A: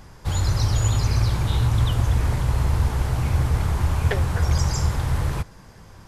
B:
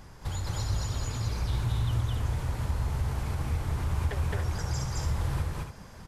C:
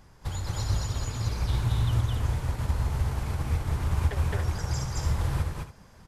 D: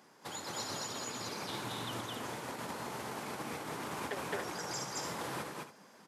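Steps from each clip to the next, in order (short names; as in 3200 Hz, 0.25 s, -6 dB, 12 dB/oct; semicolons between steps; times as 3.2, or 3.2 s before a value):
compressor 5:1, threshold -26 dBFS, peak gain reduction 11 dB; on a send: loudspeakers at several distances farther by 74 m 0 dB, 98 m -7 dB; on the sum: gain -4 dB
upward expander 1.5:1, over -44 dBFS; gain +4.5 dB
HPF 220 Hz 24 dB/oct; gain -1 dB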